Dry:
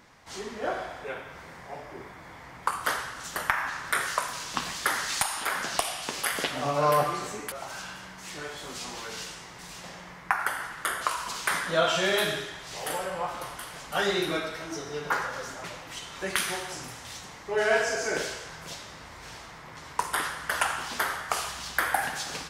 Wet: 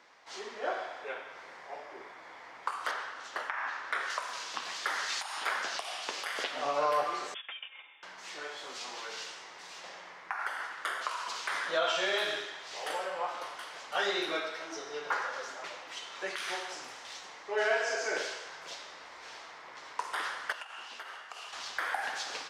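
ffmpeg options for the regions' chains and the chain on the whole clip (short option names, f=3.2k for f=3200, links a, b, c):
-filter_complex "[0:a]asettb=1/sr,asplit=3[a][b][c];[a]atrim=end=2.914[d];[b]atrim=start=2.91:end=4.1,asetpts=PTS-STARTPTS,afade=t=in:d=0.004:c=qsin,afade=t=out:st=1.186:d=0.004:c=qsin,lowpass=f=3.1k:p=1,equalizer=f=170:t=o:w=0.27:g=-7.5[e];[c]atrim=start=4.096[f];[d][e]acrossfade=d=0.004:c1=hsin:c2=qsin[g];[g][f]acrossfade=d=0.004:c1=qsin:c2=hsin,asettb=1/sr,asplit=3[h][i][j];[h]atrim=end=7.344[k];[i]atrim=start=7.34:end=8.03,asetpts=PTS-STARTPTS,afade=t=in:d=0.004:c=qsin,afade=t=out:st=0.686:d=0.004:c=qsin,agate=range=-14dB:threshold=-38dB:ratio=16:release=100:detection=peak,lowpass=f=3.1k:t=q:w=0.5098,lowpass=f=3.1k:t=q:w=0.6013,lowpass=f=3.1k:t=q:w=0.9,lowpass=f=3.1k:t=q:w=2.563,afreqshift=-3700,aecho=1:1:3.8:0.36,atrim=end_sample=30429[l];[j]atrim=start=8.026[m];[k][l]acrossfade=d=0.004:c1=hsin:c2=qsin[n];[n][m]acrossfade=d=0.004:c1=qsin:c2=hsin,asettb=1/sr,asplit=3[o][p][q];[o]atrim=end=20.524[r];[p]atrim=start=20.52:end=21.53,asetpts=PTS-STARTPTS,afade=t=in:d=0.004:c=qsin,afade=t=out:st=1.006:d=0.004:c=qsin,agate=range=-9dB:threshold=-26dB:ratio=16:release=100:detection=peak,equalizer=f=2.8k:w=7.9:g=11.5,acompressor=threshold=-36dB:ratio=20:attack=3.2:release=140:knee=1:detection=peak[s];[q]atrim=start=21.526[t];[r][s]acrossfade=d=0.004:c1=hsin:c2=qsin[u];[u][t]acrossfade=d=0.004:c1=qsin:c2=hsin,highshelf=f=8.1k:g=7,alimiter=limit=-15.5dB:level=0:latency=1:release=158,acrossover=split=340 6200:gain=0.0631 1 0.0708[v][w][x];[v][w][x]amix=inputs=3:normalize=0,volume=-2.5dB"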